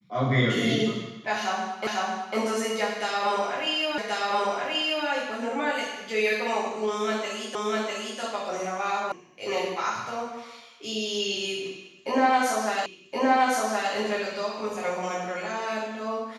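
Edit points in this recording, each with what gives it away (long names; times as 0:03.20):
0:01.87: the same again, the last 0.5 s
0:03.98: the same again, the last 1.08 s
0:07.55: the same again, the last 0.65 s
0:09.12: cut off before it has died away
0:12.86: the same again, the last 1.07 s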